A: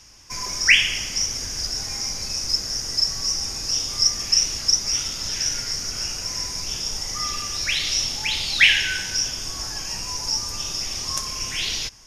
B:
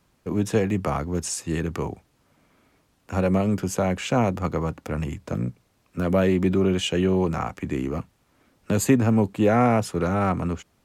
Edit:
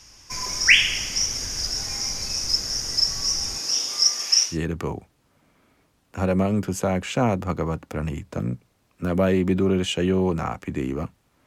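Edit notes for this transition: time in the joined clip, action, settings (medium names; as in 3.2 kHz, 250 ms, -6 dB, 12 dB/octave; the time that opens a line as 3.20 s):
A
3.57–4.58 s: high-pass 220 Hz -> 700 Hz
4.50 s: go over to B from 1.45 s, crossfade 0.16 s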